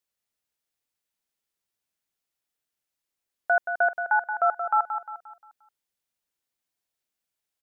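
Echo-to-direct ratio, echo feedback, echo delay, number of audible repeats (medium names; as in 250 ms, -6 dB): -7.5 dB, 41%, 176 ms, 4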